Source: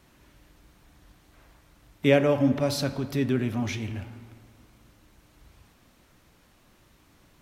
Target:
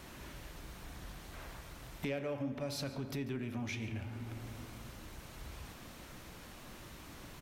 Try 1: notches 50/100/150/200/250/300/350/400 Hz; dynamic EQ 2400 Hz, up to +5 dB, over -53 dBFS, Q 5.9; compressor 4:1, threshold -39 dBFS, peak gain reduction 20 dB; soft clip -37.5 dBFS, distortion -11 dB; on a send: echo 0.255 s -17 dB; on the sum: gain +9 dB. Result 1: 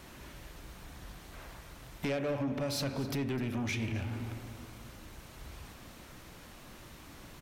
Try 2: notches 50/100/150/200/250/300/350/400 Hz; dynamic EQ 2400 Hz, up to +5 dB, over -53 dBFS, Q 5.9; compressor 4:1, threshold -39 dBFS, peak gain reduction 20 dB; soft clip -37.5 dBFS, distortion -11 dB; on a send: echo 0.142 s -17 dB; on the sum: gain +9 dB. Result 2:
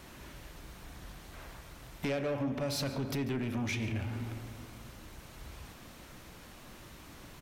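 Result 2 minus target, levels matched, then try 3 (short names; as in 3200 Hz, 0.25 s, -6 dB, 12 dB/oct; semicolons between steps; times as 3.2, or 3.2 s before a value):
compressor: peak gain reduction -7.5 dB
notches 50/100/150/200/250/300/350/400 Hz; dynamic EQ 2400 Hz, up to +5 dB, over -53 dBFS, Q 5.9; compressor 4:1, threshold -49 dBFS, peak gain reduction 27.5 dB; soft clip -37.5 dBFS, distortion -21 dB; on a send: echo 0.142 s -17 dB; on the sum: gain +9 dB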